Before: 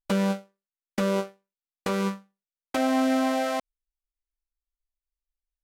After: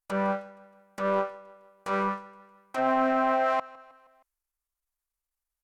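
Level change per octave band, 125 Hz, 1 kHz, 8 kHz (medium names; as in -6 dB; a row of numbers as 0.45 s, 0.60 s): no reading, +4.0 dB, under -10 dB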